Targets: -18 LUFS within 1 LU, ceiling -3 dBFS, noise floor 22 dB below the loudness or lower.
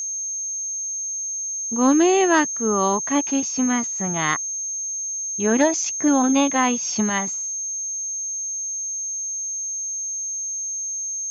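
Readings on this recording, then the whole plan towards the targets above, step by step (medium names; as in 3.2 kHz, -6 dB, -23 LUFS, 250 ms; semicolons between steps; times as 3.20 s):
tick rate 35 per s; steady tone 6.4 kHz; tone level -25 dBFS; loudness -21.5 LUFS; peak level -7.5 dBFS; loudness target -18.0 LUFS
-> de-click; band-stop 6.4 kHz, Q 30; trim +3.5 dB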